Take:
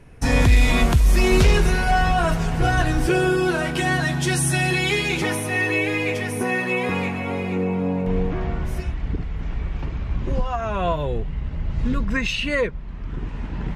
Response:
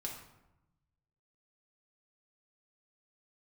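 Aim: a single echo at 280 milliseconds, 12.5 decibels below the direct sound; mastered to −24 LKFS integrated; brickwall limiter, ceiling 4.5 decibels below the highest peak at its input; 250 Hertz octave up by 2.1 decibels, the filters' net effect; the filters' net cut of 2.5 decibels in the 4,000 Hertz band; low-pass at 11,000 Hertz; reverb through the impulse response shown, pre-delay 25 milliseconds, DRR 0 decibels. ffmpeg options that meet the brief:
-filter_complex "[0:a]lowpass=11000,equalizer=frequency=250:width_type=o:gain=3,equalizer=frequency=4000:width_type=o:gain=-3.5,alimiter=limit=-11dB:level=0:latency=1,aecho=1:1:280:0.237,asplit=2[link_01][link_02];[1:a]atrim=start_sample=2205,adelay=25[link_03];[link_02][link_03]afir=irnorm=-1:irlink=0,volume=0.5dB[link_04];[link_01][link_04]amix=inputs=2:normalize=0,volume=-5.5dB"

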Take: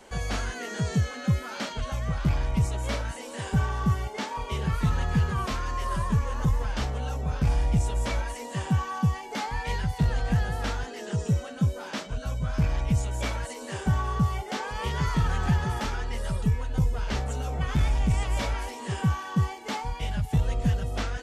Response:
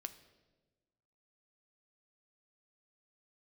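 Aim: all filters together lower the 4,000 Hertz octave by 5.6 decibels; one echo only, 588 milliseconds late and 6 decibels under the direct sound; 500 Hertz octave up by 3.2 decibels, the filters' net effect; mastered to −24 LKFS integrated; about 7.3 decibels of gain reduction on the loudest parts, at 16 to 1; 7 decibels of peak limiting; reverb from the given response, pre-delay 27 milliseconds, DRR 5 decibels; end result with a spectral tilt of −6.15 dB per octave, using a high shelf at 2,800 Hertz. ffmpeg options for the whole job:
-filter_complex "[0:a]equalizer=frequency=500:width_type=o:gain=4,highshelf=frequency=2800:gain=-4.5,equalizer=frequency=4000:width_type=o:gain=-4,acompressor=threshold=-25dB:ratio=16,alimiter=limit=-23dB:level=0:latency=1,aecho=1:1:588:0.501,asplit=2[link_01][link_02];[1:a]atrim=start_sample=2205,adelay=27[link_03];[link_02][link_03]afir=irnorm=-1:irlink=0,volume=-1.5dB[link_04];[link_01][link_04]amix=inputs=2:normalize=0,volume=7.5dB"

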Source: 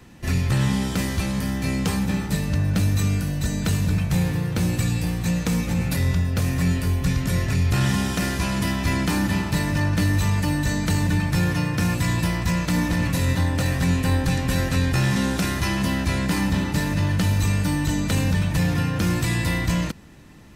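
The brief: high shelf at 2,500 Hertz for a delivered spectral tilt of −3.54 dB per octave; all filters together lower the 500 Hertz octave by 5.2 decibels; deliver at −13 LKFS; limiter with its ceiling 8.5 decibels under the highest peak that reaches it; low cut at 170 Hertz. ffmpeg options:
ffmpeg -i in.wav -af "highpass=170,equalizer=frequency=500:width_type=o:gain=-7,highshelf=frequency=2500:gain=8.5,volume=11.5dB,alimiter=limit=-3dB:level=0:latency=1" out.wav

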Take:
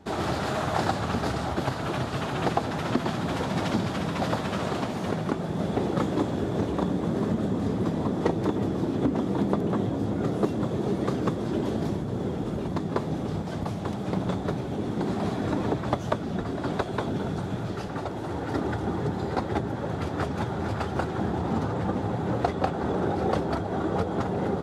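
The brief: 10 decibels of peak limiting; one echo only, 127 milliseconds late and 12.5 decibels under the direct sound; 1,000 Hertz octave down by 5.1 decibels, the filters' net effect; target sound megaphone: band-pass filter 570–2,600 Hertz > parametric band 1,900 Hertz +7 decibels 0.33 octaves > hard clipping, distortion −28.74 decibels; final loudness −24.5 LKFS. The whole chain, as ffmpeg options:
ffmpeg -i in.wav -af "equalizer=frequency=1000:width_type=o:gain=-6,alimiter=limit=-19dB:level=0:latency=1,highpass=570,lowpass=2600,equalizer=frequency=1900:width_type=o:width=0.33:gain=7,aecho=1:1:127:0.237,asoftclip=type=hard:threshold=-25dB,volume=13dB" out.wav

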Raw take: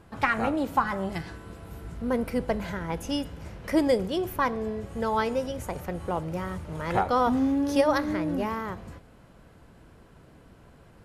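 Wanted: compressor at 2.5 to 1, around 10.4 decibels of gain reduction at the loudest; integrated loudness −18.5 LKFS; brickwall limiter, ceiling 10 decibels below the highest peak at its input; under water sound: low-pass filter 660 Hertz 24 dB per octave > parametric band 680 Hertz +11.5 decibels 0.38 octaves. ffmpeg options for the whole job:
ffmpeg -i in.wav -af "acompressor=threshold=-34dB:ratio=2.5,alimiter=level_in=4dB:limit=-24dB:level=0:latency=1,volume=-4dB,lowpass=frequency=660:width=0.5412,lowpass=frequency=660:width=1.3066,equalizer=frequency=680:width_type=o:width=0.38:gain=11.5,volume=19dB" out.wav

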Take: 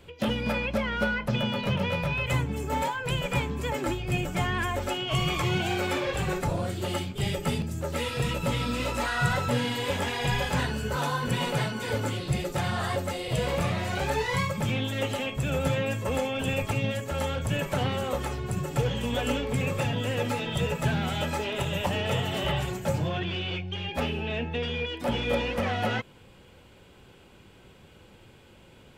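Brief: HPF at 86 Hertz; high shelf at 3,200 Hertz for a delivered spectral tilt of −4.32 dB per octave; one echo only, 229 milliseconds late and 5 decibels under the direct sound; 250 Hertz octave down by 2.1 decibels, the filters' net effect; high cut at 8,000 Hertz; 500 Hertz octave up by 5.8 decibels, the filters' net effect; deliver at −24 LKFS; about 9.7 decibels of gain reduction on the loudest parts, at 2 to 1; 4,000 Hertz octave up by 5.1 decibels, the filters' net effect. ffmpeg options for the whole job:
ffmpeg -i in.wav -af "highpass=86,lowpass=8000,equalizer=frequency=250:width_type=o:gain=-5,equalizer=frequency=500:width_type=o:gain=7.5,highshelf=frequency=3200:gain=4.5,equalizer=frequency=4000:width_type=o:gain=4,acompressor=threshold=-37dB:ratio=2,aecho=1:1:229:0.562,volume=8.5dB" out.wav

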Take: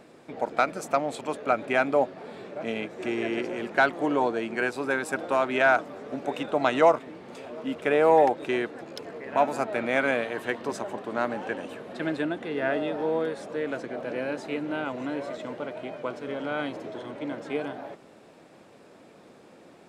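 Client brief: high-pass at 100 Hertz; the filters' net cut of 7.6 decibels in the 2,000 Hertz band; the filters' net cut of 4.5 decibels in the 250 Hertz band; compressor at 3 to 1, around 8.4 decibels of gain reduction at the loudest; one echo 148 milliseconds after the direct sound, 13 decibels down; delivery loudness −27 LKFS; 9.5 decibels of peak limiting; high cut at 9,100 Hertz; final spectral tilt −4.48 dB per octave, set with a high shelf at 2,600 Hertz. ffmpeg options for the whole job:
ffmpeg -i in.wav -af "highpass=100,lowpass=9100,equalizer=frequency=250:width_type=o:gain=-5.5,equalizer=frequency=2000:width_type=o:gain=-8.5,highshelf=frequency=2600:gain=-6,acompressor=threshold=-27dB:ratio=3,alimiter=level_in=1.5dB:limit=-24dB:level=0:latency=1,volume=-1.5dB,aecho=1:1:148:0.224,volume=9.5dB" out.wav

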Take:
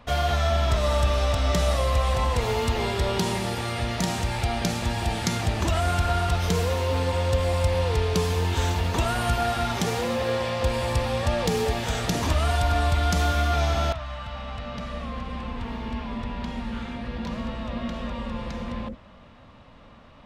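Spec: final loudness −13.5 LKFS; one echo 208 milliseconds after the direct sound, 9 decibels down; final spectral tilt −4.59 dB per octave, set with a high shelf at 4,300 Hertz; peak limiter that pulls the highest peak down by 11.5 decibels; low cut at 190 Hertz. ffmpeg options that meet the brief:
ffmpeg -i in.wav -af "highpass=190,highshelf=frequency=4300:gain=-6.5,alimiter=limit=-23.5dB:level=0:latency=1,aecho=1:1:208:0.355,volume=18.5dB" out.wav

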